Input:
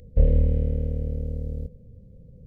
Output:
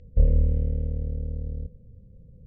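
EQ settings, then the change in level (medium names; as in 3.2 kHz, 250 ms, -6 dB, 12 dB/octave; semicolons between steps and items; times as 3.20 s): distance through air 130 m; bass shelf 150 Hz +5.5 dB; -5.5 dB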